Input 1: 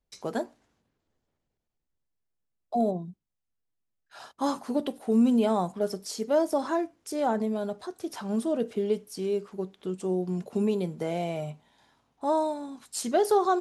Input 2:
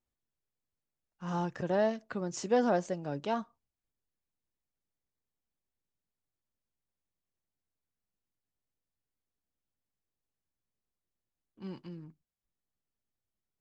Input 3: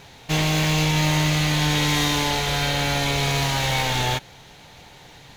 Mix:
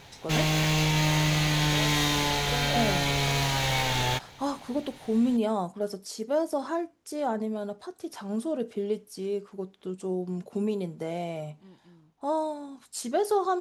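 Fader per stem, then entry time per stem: -2.5, -11.0, -4.0 dB; 0.00, 0.00, 0.00 s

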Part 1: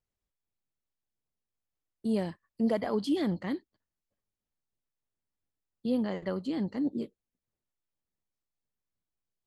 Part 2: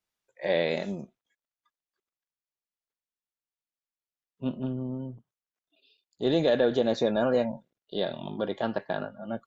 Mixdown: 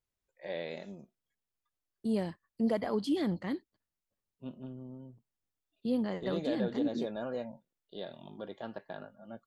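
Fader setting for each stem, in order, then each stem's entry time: -2.0, -12.5 dB; 0.00, 0.00 s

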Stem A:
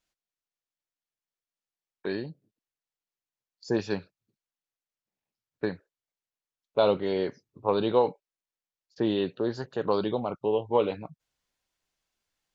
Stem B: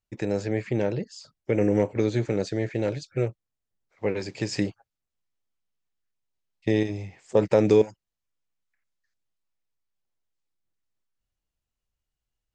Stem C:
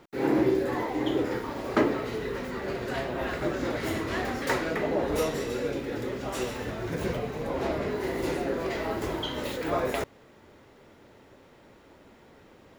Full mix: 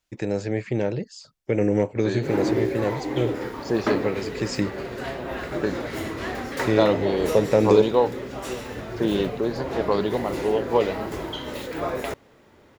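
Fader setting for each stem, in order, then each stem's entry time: +3.0, +1.0, 0.0 dB; 0.00, 0.00, 2.10 s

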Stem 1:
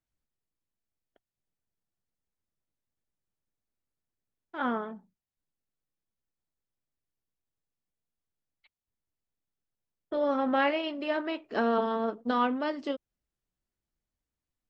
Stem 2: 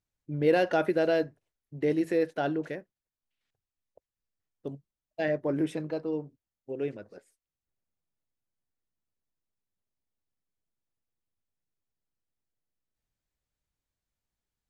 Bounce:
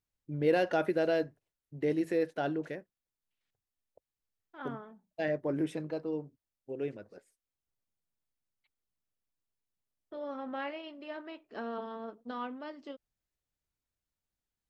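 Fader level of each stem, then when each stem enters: -12.0, -3.5 dB; 0.00, 0.00 s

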